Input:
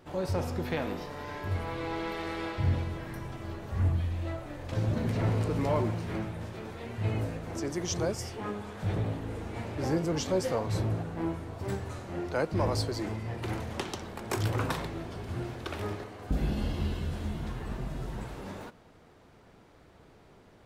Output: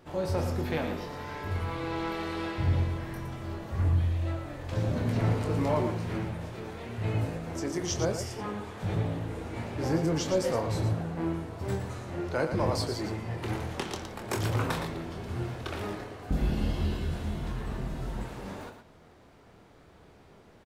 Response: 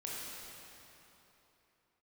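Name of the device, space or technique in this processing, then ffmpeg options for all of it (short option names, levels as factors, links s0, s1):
slapback doubling: -filter_complex "[0:a]asplit=3[s0][s1][s2];[s1]adelay=25,volume=0.422[s3];[s2]adelay=115,volume=0.398[s4];[s0][s3][s4]amix=inputs=3:normalize=0"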